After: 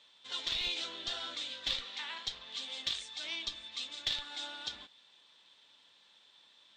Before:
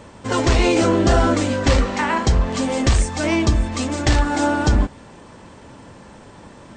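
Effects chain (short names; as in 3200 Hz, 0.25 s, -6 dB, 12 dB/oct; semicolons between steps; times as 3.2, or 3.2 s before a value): band-pass 3600 Hz, Q 8.1; in parallel at -6.5 dB: Schmitt trigger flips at -27.5 dBFS; on the sum: gain +1.5 dB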